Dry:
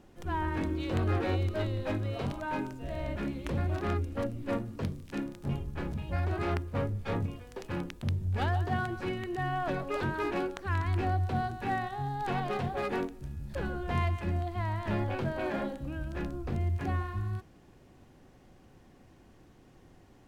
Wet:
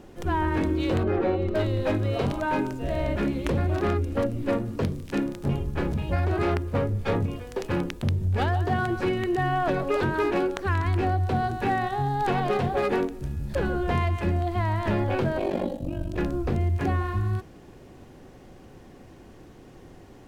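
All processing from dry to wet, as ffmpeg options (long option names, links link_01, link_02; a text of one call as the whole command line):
ffmpeg -i in.wav -filter_complex "[0:a]asettb=1/sr,asplit=3[link_01][link_02][link_03];[link_01]atrim=end=1.034[link_04];[link_02]atrim=start=1.03:end=1.55,asetpts=PTS-STARTPTS,afade=type=in:duration=0.004:curve=qsin,afade=type=out:start_time=0.516:duration=0.004:curve=qsin,lowpass=frequency=1300:poles=1,aecho=1:1:5.2:0.54,atrim=end_sample=22932[link_05];[link_03]atrim=start=1.546[link_06];[link_04][link_05]acrossfade=duration=0.004:curve1=hsin:curve2=qsin[link_07];[link_07][link_06]acrossfade=duration=0.004:curve1=qsin:curve2=hsin,asettb=1/sr,asplit=3[link_08][link_09][link_10];[link_08]atrim=end=15.384[link_11];[link_09]atrim=start=15.38:end=16.18,asetpts=PTS-STARTPTS,afade=type=in:duration=0.004:curve=qsin,afade=type=out:start_time=0.796:duration=0.004:curve=qsin,equalizer=frequency=1500:width=1.7:gain=-13.5,aeval=exprs='val(0)+0.00158*sin(2*PI*650*n/s)':channel_layout=same,aeval=exprs='val(0)*sin(2*PI*24*n/s)':channel_layout=same[link_12];[link_10]atrim=start=16.176[link_13];[link_11][link_12]acrossfade=duration=0.004:curve1=hsin:curve2=qsin[link_14];[link_14][link_13]acrossfade=duration=0.004:curve1=qsin:curve2=hsin,equalizer=frequency=430:width=1.5:gain=4,acompressor=threshold=-29dB:ratio=6,volume=8.5dB" out.wav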